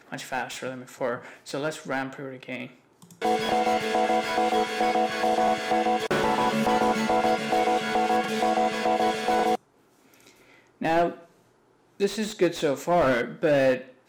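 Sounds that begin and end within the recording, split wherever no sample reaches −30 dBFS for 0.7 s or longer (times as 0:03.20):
0:10.82–0:11.13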